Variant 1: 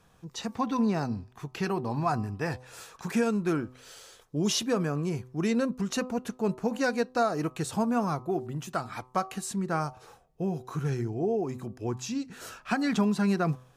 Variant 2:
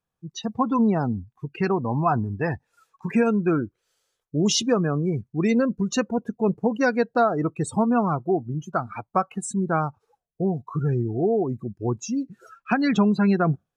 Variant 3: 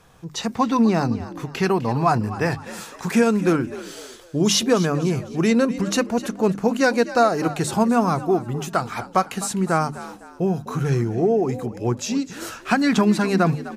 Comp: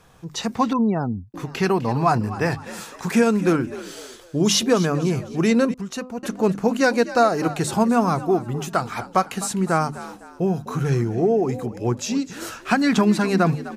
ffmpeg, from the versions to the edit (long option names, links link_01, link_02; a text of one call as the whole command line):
ffmpeg -i take0.wav -i take1.wav -i take2.wav -filter_complex "[2:a]asplit=3[link_01][link_02][link_03];[link_01]atrim=end=0.732[link_04];[1:a]atrim=start=0.728:end=1.342[link_05];[link_02]atrim=start=1.338:end=5.742[link_06];[0:a]atrim=start=5.738:end=6.232[link_07];[link_03]atrim=start=6.228[link_08];[link_04][link_05]acrossfade=duration=0.004:curve1=hsin:curve2=hsin[link_09];[link_09][link_06]acrossfade=duration=0.004:curve1=hsin:curve2=hsin[link_10];[link_10][link_07]acrossfade=duration=0.004:curve1=hsin:curve2=hsin[link_11];[link_11][link_08]acrossfade=duration=0.004:curve1=hsin:curve2=hsin" out.wav